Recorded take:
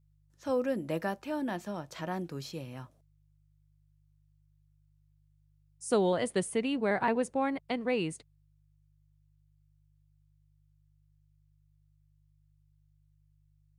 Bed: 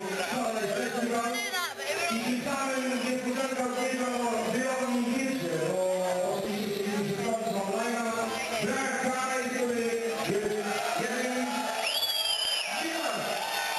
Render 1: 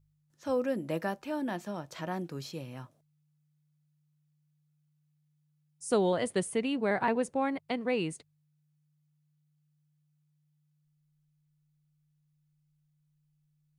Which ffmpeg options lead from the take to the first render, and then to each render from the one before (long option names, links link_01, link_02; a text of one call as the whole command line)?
ffmpeg -i in.wav -af "bandreject=frequency=50:width_type=h:width=4,bandreject=frequency=100:width_type=h:width=4" out.wav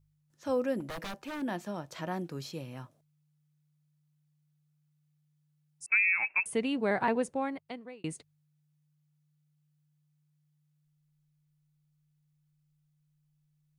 ffmpeg -i in.wav -filter_complex "[0:a]asettb=1/sr,asplit=3[link_01][link_02][link_03];[link_01]atrim=end=0.804[link_04];[link_02]atrim=start=0.8:end=1.42,asetpts=PTS-STARTPTS,afade=type=in:duration=0.004:curve=qsin,afade=type=out:start_time=0.616:duration=0.004:curve=qsin,aeval=exprs='0.0211*(abs(mod(val(0)/0.0211+3,4)-2)-1)':channel_layout=same[link_05];[link_03]atrim=start=1.416[link_06];[link_04][link_05]acrossfade=duration=0.004:curve1=hsin:curve2=qsin[link_07];[link_07][link_06]acrossfade=duration=0.004:curve1=qsin:curve2=hsin,asettb=1/sr,asplit=3[link_08][link_09][link_10];[link_08]atrim=end=5.864[link_11];[link_09]atrim=start=5.86:end=6.46,asetpts=PTS-STARTPTS,afade=type=in:duration=0.004:curve=qsin,afade=type=out:start_time=0.596:duration=0.004:curve=qsin,lowpass=frequency=2400:width_type=q:width=0.5098,lowpass=frequency=2400:width_type=q:width=0.6013,lowpass=frequency=2400:width_type=q:width=0.9,lowpass=frequency=2400:width_type=q:width=2.563,afreqshift=-2800[link_12];[link_10]atrim=start=6.456[link_13];[link_11][link_12]acrossfade=duration=0.004:curve1=hsin:curve2=qsin[link_14];[link_14][link_13]acrossfade=duration=0.004:curve1=qsin:curve2=hsin,asplit=2[link_15][link_16];[link_15]atrim=end=8.04,asetpts=PTS-STARTPTS,afade=type=out:start_time=7.19:duration=0.85[link_17];[link_16]atrim=start=8.04,asetpts=PTS-STARTPTS,afade=type=in:duration=0.004:curve=hsin[link_18];[link_17][link_18]concat=n=2:v=0:a=1" out.wav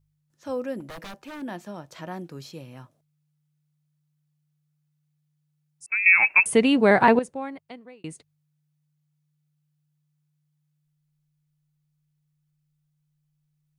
ffmpeg -i in.wav -filter_complex "[0:a]asplit=3[link_01][link_02][link_03];[link_01]atrim=end=6.062[link_04];[link_02]atrim=start=6.058:end=7.192,asetpts=PTS-STARTPTS,volume=12dB[link_05];[link_03]atrim=start=7.188[link_06];[link_04][link_05]acrossfade=duration=0.004:curve1=hsin:curve2=hsin[link_07];[link_07][link_06]acrossfade=duration=0.004:curve1=hsin:curve2=hsin" out.wav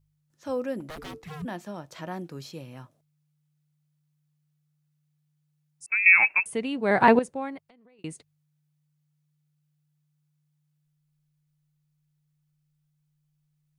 ffmpeg -i in.wav -filter_complex "[0:a]asplit=3[link_01][link_02][link_03];[link_01]afade=type=out:start_time=0.95:duration=0.02[link_04];[link_02]afreqshift=-450,afade=type=in:start_time=0.95:duration=0.02,afade=type=out:start_time=1.44:duration=0.02[link_05];[link_03]afade=type=in:start_time=1.44:duration=0.02[link_06];[link_04][link_05][link_06]amix=inputs=3:normalize=0,asettb=1/sr,asplit=3[link_07][link_08][link_09];[link_07]atrim=end=7.584[link_10];[link_08]atrim=start=7.58:end=7.99,asetpts=PTS-STARTPTS,afade=type=in:duration=0.004:curve=qsin,afade=type=out:start_time=0.406:duration=0.004:curve=qsin,acompressor=threshold=-54dB:ratio=12:attack=3.2:release=140:knee=1:detection=peak[link_11];[link_09]atrim=start=7.986[link_12];[link_10][link_11]acrossfade=duration=0.004:curve1=hsin:curve2=qsin[link_13];[link_13][link_12]acrossfade=duration=0.004:curve1=qsin:curve2=hsin,asplit=3[link_14][link_15][link_16];[link_14]atrim=end=6.45,asetpts=PTS-STARTPTS,afade=type=out:start_time=6.19:duration=0.26:silence=0.281838[link_17];[link_15]atrim=start=6.45:end=6.82,asetpts=PTS-STARTPTS,volume=-11dB[link_18];[link_16]atrim=start=6.82,asetpts=PTS-STARTPTS,afade=type=in:duration=0.26:silence=0.281838[link_19];[link_17][link_18][link_19]concat=n=3:v=0:a=1" out.wav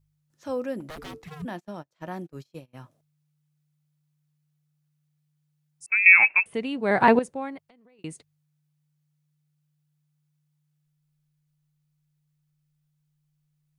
ffmpeg -i in.wav -filter_complex "[0:a]asplit=3[link_01][link_02][link_03];[link_01]afade=type=out:start_time=1.28:duration=0.02[link_04];[link_02]agate=range=-29dB:threshold=-40dB:ratio=16:release=100:detection=peak,afade=type=in:start_time=1.28:duration=0.02,afade=type=out:start_time=2.73:duration=0.02[link_05];[link_03]afade=type=in:start_time=2.73:duration=0.02[link_06];[link_04][link_05][link_06]amix=inputs=3:normalize=0,asettb=1/sr,asplit=3[link_07][link_08][link_09];[link_07]atrim=end=5.914[link_10];[link_08]atrim=start=5.91:end=6.54,asetpts=PTS-STARTPTS,afade=type=in:duration=0.004:curve=qsin,afade=type=out:start_time=0.626:duration=0.004:curve=qsin,highshelf=frequency=4400:width_type=q:width=1.5:gain=-13[link_11];[link_09]atrim=start=6.536[link_12];[link_10][link_11]acrossfade=duration=0.004:curve1=hsin:curve2=qsin[link_13];[link_13][link_12]acrossfade=duration=0.004:curve1=qsin:curve2=hsin" out.wav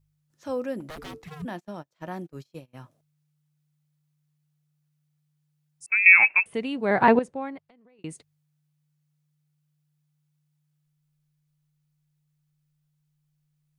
ffmpeg -i in.wav -filter_complex "[0:a]asettb=1/sr,asplit=3[link_01][link_02][link_03];[link_01]atrim=end=6.854[link_04];[link_02]atrim=start=6.85:end=8.09,asetpts=PTS-STARTPTS,afade=type=in:duration=0.004:curve=qsin,afade=type=out:start_time=1.236:duration=0.004:curve=qsin,lowpass=frequency=3400:poles=1[link_05];[link_03]atrim=start=8.086[link_06];[link_04][link_05]acrossfade=duration=0.004:curve1=hsin:curve2=qsin[link_07];[link_07][link_06]acrossfade=duration=0.004:curve1=qsin:curve2=hsin" out.wav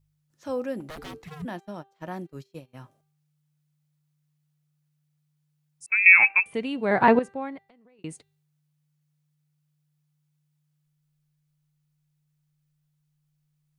ffmpeg -i in.wav -af "bandreject=frequency=393.5:width_type=h:width=4,bandreject=frequency=787:width_type=h:width=4,bandreject=frequency=1180.5:width_type=h:width=4,bandreject=frequency=1574:width_type=h:width=4,bandreject=frequency=1967.5:width_type=h:width=4,bandreject=frequency=2361:width_type=h:width=4,bandreject=frequency=2754.5:width_type=h:width=4,bandreject=frequency=3148:width_type=h:width=4,bandreject=frequency=3541.5:width_type=h:width=4,bandreject=frequency=3935:width_type=h:width=4,bandreject=frequency=4328.5:width_type=h:width=4" out.wav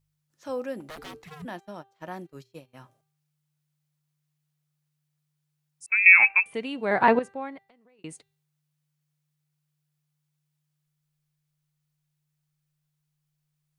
ffmpeg -i in.wav -af "lowshelf=frequency=300:gain=-7,bandreject=frequency=60:width_type=h:width=6,bandreject=frequency=120:width_type=h:width=6" out.wav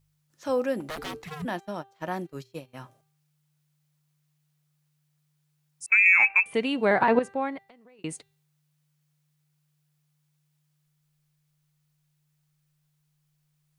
ffmpeg -i in.wav -af "alimiter=limit=-16dB:level=0:latency=1:release=166,acontrast=48" out.wav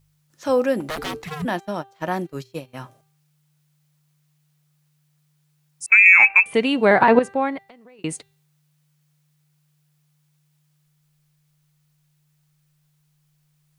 ffmpeg -i in.wav -af "volume=7dB" out.wav